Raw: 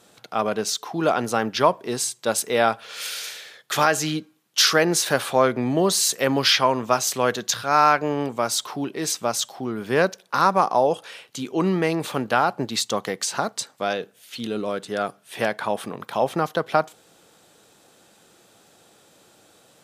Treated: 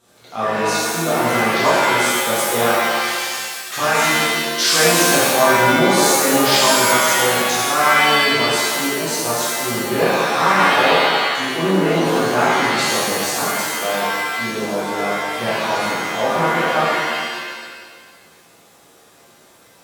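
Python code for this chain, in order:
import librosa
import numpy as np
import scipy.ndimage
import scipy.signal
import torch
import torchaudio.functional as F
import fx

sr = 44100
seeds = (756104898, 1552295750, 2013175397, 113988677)

y = fx.low_shelf(x, sr, hz=190.0, db=3.5)
y = fx.rev_shimmer(y, sr, seeds[0], rt60_s=1.5, semitones=7, shimmer_db=-2, drr_db=-9.5)
y = F.gain(torch.from_numpy(y), -7.5).numpy()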